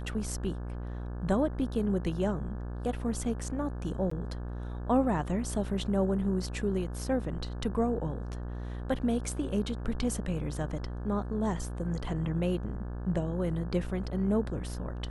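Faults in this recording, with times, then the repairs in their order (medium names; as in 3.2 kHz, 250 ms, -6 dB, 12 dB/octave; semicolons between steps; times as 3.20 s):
buzz 60 Hz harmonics 29 -37 dBFS
4.10–4.11 s: dropout 14 ms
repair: de-hum 60 Hz, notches 29; interpolate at 4.10 s, 14 ms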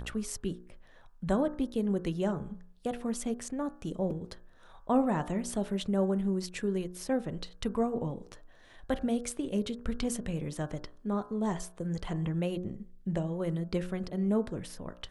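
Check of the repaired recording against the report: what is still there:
nothing left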